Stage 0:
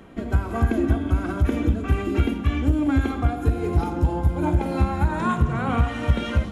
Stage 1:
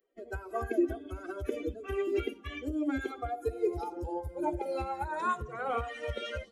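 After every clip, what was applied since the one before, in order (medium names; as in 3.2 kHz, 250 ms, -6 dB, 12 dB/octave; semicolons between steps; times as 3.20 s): expander on every frequency bin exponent 2; resonant low shelf 270 Hz -13.5 dB, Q 3; trim -3.5 dB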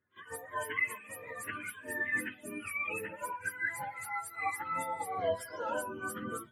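spectrum inverted on a logarithmic axis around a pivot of 840 Hz; pre-echo 50 ms -20.5 dB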